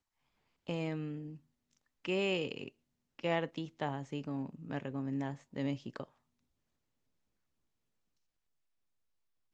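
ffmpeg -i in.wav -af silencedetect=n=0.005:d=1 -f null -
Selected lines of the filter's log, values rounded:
silence_start: 6.04
silence_end: 9.54 | silence_duration: 3.50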